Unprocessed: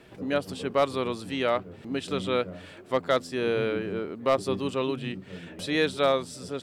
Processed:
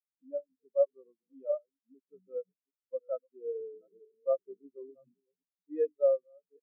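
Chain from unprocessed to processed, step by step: chunks repeated in reverse 388 ms, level -8.5 dB; bass shelf 75 Hz -5 dB; spectral contrast expander 4:1; trim -5 dB

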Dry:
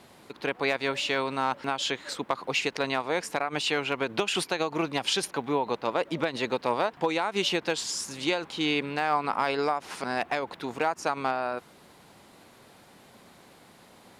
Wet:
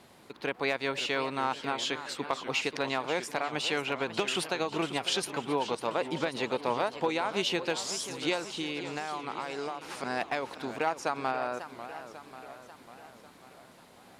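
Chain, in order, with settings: 8.42–9.81 s: compression, threshold -29 dBFS, peak gain reduction 9.5 dB; modulated delay 543 ms, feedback 58%, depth 214 cents, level -12 dB; trim -3 dB

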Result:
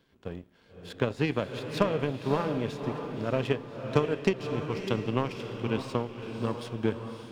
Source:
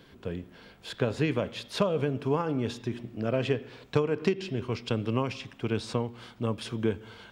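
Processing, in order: power-law waveshaper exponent 1.4; echo that smears into a reverb 585 ms, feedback 43%, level -7 dB; trim +3 dB

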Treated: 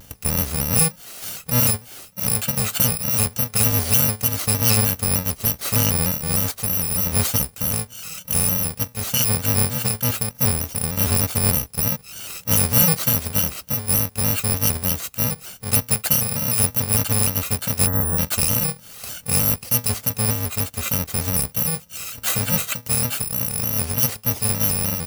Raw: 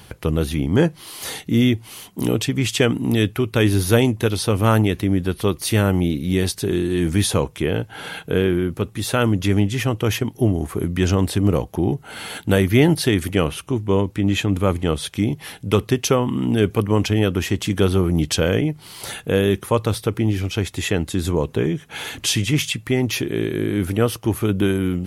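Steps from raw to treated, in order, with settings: bit-reversed sample order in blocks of 128 samples; time-frequency box 17.86–18.17 s, 1.9–11 kHz -26 dB; vibrato with a chosen wave square 3.3 Hz, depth 100 cents; trim -1 dB

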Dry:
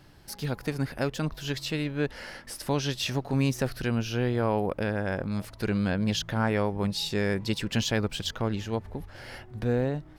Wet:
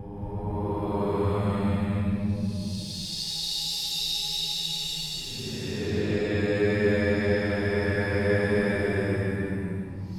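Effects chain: Paulstretch 15×, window 0.10 s, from 6.75 s; gated-style reverb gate 270 ms rising, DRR -4 dB; trim -4.5 dB

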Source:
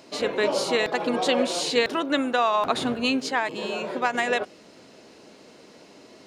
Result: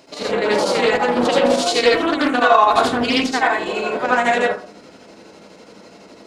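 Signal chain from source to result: 1.57–3.92 s: comb 2.7 ms, depth 56%; square tremolo 12 Hz, depth 60%, duty 70%; reverberation RT60 0.45 s, pre-delay 67 ms, DRR -6.5 dB; loudspeaker Doppler distortion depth 0.25 ms; trim +1 dB

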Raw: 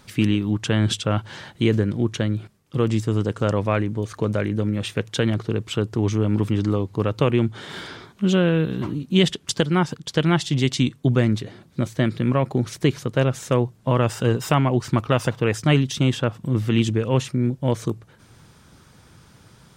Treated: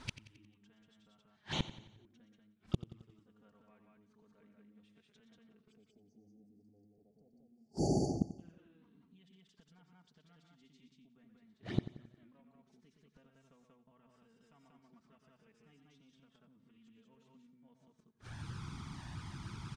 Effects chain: spectral selection erased 5.72–8.39 s, 860–4400 Hz; gate -41 dBFS, range -9 dB; peaking EQ 490 Hz -7 dB 0.44 oct; compression 2:1, threshold -38 dBFS, peak gain reduction 14 dB; loudspeakers at several distances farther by 41 m -9 dB, 64 m -2 dB; peak limiter -23.5 dBFS, peak gain reduction 8 dB; inverted gate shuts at -30 dBFS, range -41 dB; touch-sensitive flanger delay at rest 5.7 ms, full sweep at -49 dBFS; distance through air 69 m; feedback delay 89 ms, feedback 50%, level -14.5 dB; trim +12.5 dB

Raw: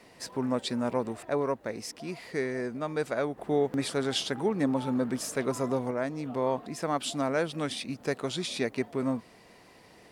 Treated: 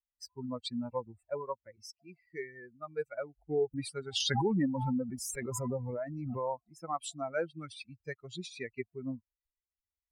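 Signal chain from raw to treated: expander on every frequency bin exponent 3; 4.20–6.46 s: swell ahead of each attack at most 21 dB/s

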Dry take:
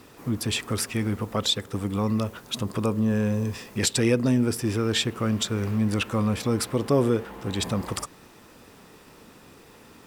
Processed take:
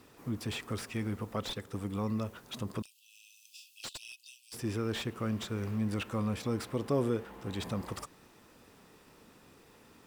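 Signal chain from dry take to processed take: 2.82–4.54 s: Chebyshev high-pass 2.6 kHz, order 8; slew-rate limiter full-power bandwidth 140 Hz; trim -8.5 dB

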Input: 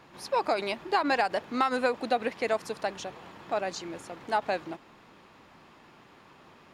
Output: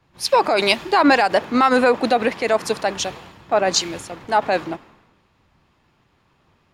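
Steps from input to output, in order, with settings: loudness maximiser +21.5 dB; three bands expanded up and down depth 100%; trim -6.5 dB

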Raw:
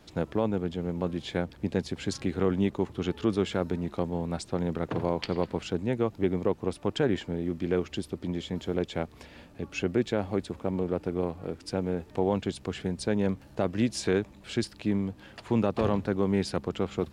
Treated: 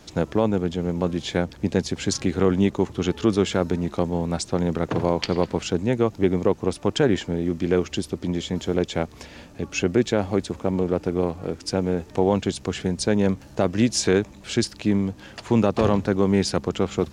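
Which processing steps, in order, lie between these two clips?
peaking EQ 6.3 kHz +7.5 dB 0.67 oct; trim +6.5 dB

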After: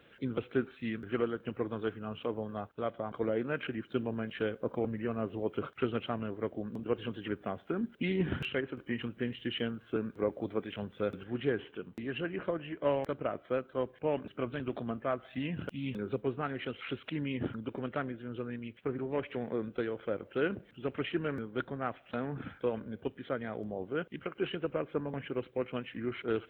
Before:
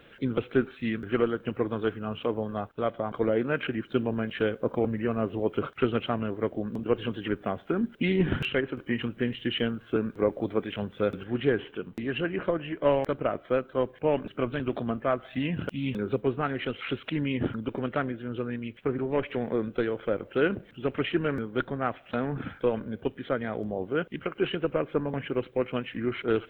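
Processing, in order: high-pass 46 Hz; trim -6.5 dB

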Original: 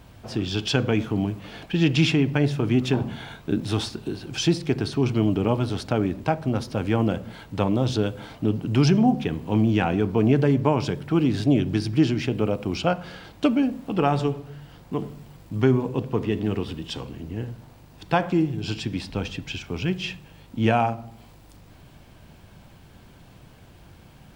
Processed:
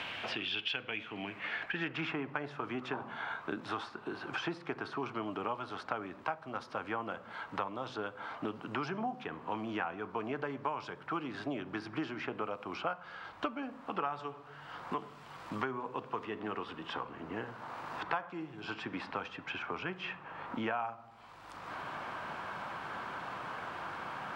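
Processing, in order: band-pass sweep 2.9 kHz -> 1.2 kHz, 1.01–2.13 s; three bands compressed up and down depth 100%

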